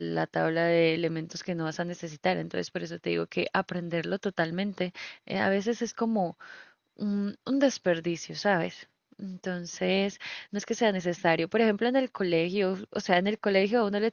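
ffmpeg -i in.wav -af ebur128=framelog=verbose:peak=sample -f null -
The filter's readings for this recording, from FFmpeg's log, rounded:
Integrated loudness:
  I:         -28.7 LUFS
  Threshold: -39.0 LUFS
Loudness range:
  LRA:         4.0 LU
  Threshold: -49.6 LUFS
  LRA low:   -31.1 LUFS
  LRA high:  -27.1 LUFS
Sample peak:
  Peak:       -9.3 dBFS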